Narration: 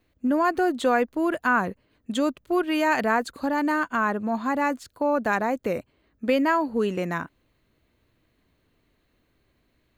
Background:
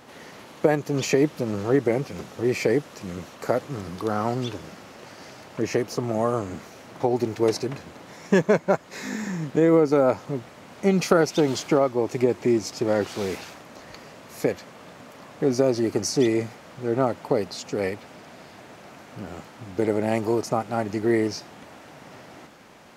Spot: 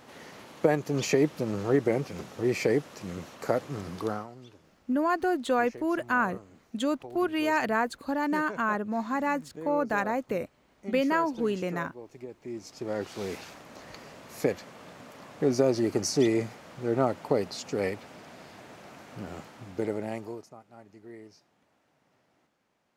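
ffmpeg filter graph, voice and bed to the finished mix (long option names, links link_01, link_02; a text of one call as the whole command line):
ffmpeg -i stem1.wav -i stem2.wav -filter_complex "[0:a]adelay=4650,volume=-4dB[link_01];[1:a]volume=14.5dB,afade=type=out:start_time=4.05:duration=0.22:silence=0.133352,afade=type=in:start_time=12.41:duration=1.39:silence=0.125893,afade=type=out:start_time=19.38:duration=1.12:silence=0.0794328[link_02];[link_01][link_02]amix=inputs=2:normalize=0" out.wav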